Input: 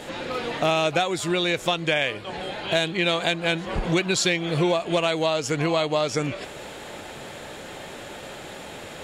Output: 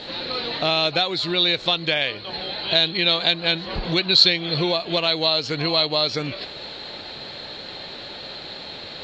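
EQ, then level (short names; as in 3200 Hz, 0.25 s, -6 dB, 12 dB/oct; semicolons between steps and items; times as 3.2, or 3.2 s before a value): synth low-pass 4200 Hz, resonance Q 14; air absorption 63 m; -1.5 dB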